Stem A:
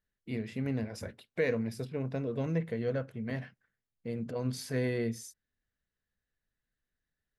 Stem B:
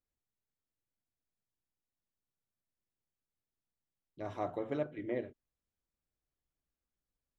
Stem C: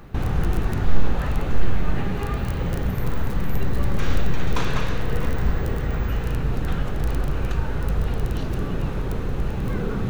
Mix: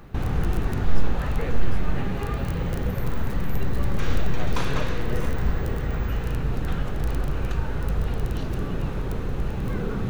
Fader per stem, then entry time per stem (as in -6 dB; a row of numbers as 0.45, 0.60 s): -6.5, -2.0, -2.0 dB; 0.00, 0.00, 0.00 s